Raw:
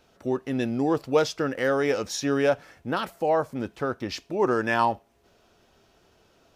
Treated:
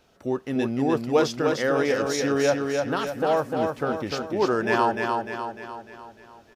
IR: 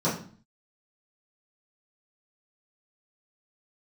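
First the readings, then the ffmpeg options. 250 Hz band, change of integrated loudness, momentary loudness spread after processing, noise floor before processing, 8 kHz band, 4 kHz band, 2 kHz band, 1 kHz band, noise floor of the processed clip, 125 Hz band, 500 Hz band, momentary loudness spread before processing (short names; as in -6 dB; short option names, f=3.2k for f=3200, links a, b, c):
+2.0 dB, +1.5 dB, 11 LU, -63 dBFS, +2.0 dB, +2.0 dB, +2.0 dB, +2.0 dB, -55 dBFS, +1.5 dB, +2.0 dB, 8 LU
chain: -af "aecho=1:1:300|600|900|1200|1500|1800|2100:0.631|0.322|0.164|0.0837|0.0427|0.0218|0.0111"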